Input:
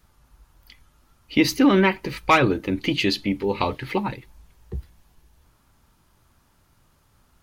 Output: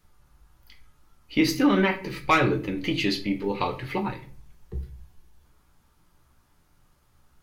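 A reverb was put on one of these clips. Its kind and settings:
rectangular room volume 30 cubic metres, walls mixed, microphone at 0.36 metres
level −5 dB

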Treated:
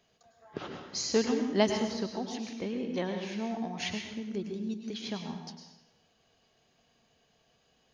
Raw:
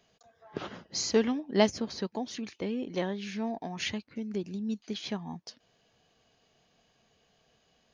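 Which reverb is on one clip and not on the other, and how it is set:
dense smooth reverb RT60 0.91 s, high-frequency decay 0.9×, pre-delay 90 ms, DRR 4 dB
level −2 dB

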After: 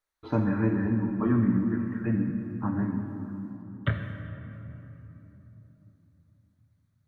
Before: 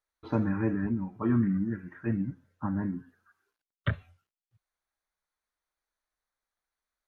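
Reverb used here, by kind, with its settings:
rectangular room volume 220 cubic metres, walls hard, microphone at 0.3 metres
level +1.5 dB

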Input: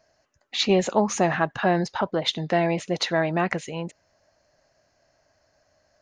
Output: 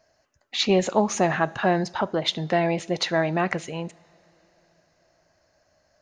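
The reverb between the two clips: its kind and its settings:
coupled-rooms reverb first 0.51 s, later 4.4 s, from −18 dB, DRR 18.5 dB

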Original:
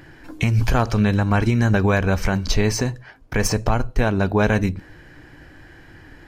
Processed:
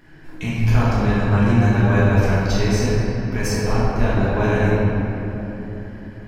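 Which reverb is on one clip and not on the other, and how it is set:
rectangular room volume 220 cubic metres, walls hard, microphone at 1.4 metres
level −9.5 dB

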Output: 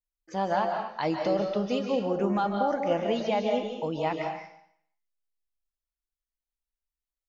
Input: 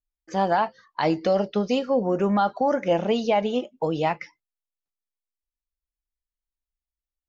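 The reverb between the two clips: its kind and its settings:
comb and all-pass reverb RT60 0.67 s, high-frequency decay 1×, pre-delay 110 ms, DRR 2.5 dB
level −6 dB

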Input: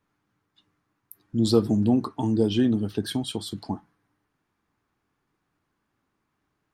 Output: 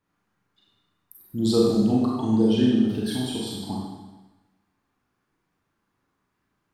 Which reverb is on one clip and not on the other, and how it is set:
four-comb reverb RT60 1.1 s, combs from 32 ms, DRR −4 dB
level −4 dB

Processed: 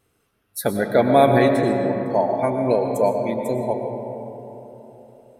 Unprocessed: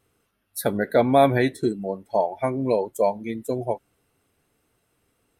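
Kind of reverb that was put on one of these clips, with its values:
comb and all-pass reverb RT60 3.6 s, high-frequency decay 0.35×, pre-delay 75 ms, DRR 3.5 dB
level +1.5 dB

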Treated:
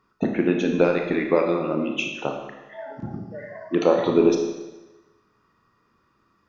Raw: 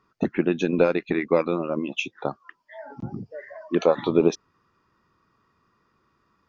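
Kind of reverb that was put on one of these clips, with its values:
four-comb reverb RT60 1.1 s, combs from 26 ms, DRR 2.5 dB

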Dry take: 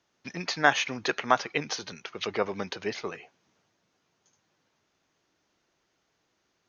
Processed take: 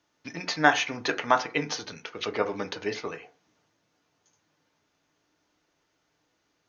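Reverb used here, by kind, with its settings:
feedback delay network reverb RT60 0.34 s, low-frequency decay 0.95×, high-frequency decay 0.45×, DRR 6 dB

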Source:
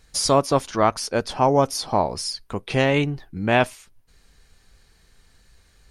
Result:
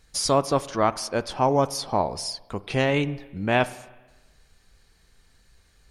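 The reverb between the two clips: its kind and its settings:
spring reverb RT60 1.2 s, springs 31/50 ms, chirp 70 ms, DRR 16.5 dB
level −3 dB

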